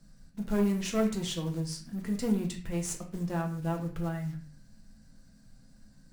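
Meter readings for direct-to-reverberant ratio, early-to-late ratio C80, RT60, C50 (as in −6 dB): 1.5 dB, 13.5 dB, 0.45 s, 9.0 dB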